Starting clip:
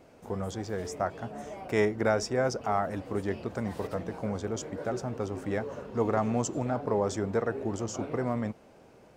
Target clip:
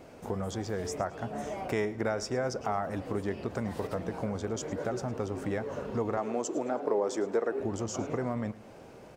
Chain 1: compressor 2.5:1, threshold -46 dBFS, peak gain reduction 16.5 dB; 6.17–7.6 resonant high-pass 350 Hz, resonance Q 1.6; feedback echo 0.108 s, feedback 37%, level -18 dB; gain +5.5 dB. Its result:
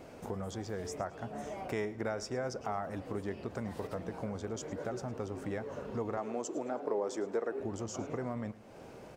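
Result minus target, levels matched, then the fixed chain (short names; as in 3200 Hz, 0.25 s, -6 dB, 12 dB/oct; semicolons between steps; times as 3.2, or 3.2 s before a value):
compressor: peak gain reduction +5 dB
compressor 2.5:1, threshold -37.5 dBFS, peak gain reduction 11.5 dB; 6.17–7.6 resonant high-pass 350 Hz, resonance Q 1.6; feedback echo 0.108 s, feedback 37%, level -18 dB; gain +5.5 dB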